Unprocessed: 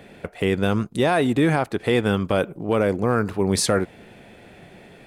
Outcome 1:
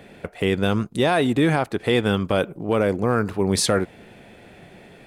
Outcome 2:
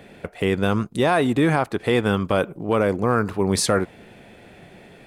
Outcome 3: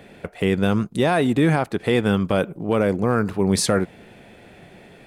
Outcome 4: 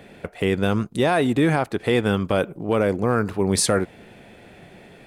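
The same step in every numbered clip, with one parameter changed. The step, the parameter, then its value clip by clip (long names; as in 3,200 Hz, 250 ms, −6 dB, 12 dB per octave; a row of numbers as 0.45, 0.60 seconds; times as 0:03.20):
dynamic equaliser, frequency: 3,400, 1,100, 180, 9,100 Hertz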